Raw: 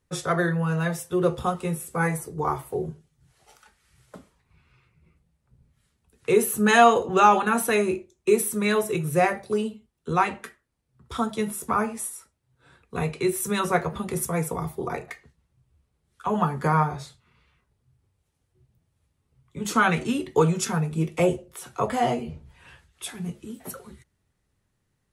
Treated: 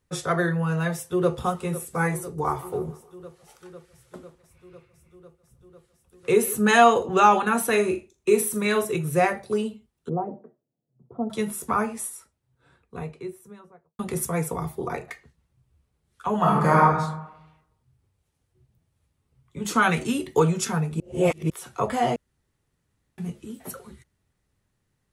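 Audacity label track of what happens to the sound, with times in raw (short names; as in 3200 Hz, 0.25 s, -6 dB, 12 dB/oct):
0.930000	1.350000	echo throw 0.5 s, feedback 80%, level -14.5 dB
2.230000	6.570000	thinning echo 0.151 s, feedback 52%, level -16.5 dB
7.690000	8.850000	flutter echo walls apart 7 m, dies away in 0.24 s
10.090000	11.300000	Chebyshev band-pass 130–690 Hz, order 3
11.970000	13.990000	studio fade out
16.370000	16.820000	reverb throw, RT60 0.89 s, DRR -4.5 dB
19.820000	20.400000	high shelf 7800 Hz +9.5 dB
21.000000	21.500000	reverse
22.160000	23.180000	room tone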